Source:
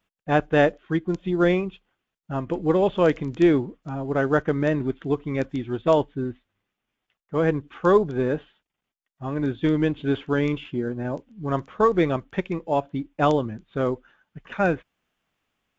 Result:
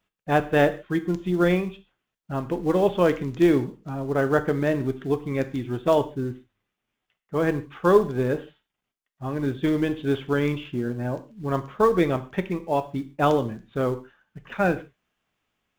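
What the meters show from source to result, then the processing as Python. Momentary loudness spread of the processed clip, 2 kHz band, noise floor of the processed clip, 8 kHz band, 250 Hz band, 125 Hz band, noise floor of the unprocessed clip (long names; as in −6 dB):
12 LU, −0.5 dB, −84 dBFS, can't be measured, −0.5 dB, 0.0 dB, −85 dBFS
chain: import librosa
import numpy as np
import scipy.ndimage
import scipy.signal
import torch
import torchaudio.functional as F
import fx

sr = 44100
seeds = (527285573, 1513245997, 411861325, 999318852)

p1 = fx.quant_float(x, sr, bits=2)
p2 = x + (p1 * 10.0 ** (-8.5 / 20.0))
p3 = fx.rev_gated(p2, sr, seeds[0], gate_ms=170, shape='falling', drr_db=10.0)
y = p3 * 10.0 ** (-3.5 / 20.0)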